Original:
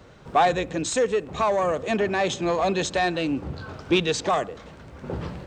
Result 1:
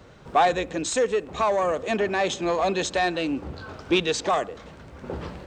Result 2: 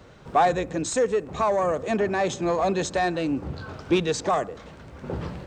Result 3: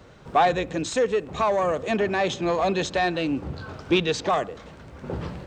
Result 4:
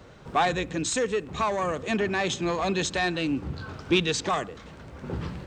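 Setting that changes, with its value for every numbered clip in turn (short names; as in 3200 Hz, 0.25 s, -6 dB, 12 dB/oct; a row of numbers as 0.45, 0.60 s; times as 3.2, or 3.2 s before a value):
dynamic EQ, frequency: 130, 3100, 8400, 610 Hz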